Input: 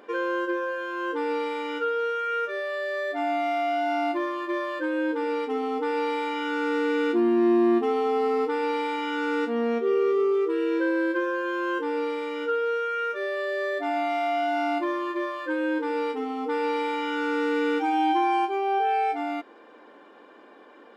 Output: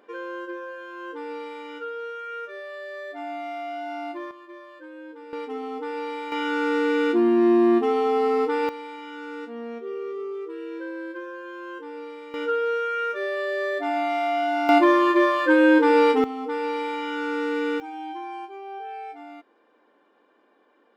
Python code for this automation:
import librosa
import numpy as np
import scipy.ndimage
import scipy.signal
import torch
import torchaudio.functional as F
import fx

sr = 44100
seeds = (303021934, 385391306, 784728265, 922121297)

y = fx.gain(x, sr, db=fx.steps((0.0, -7.0), (4.31, -15.0), (5.33, -4.5), (6.32, 2.5), (8.69, -9.5), (12.34, 1.5), (14.69, 10.5), (16.24, -1.0), (17.8, -12.0)))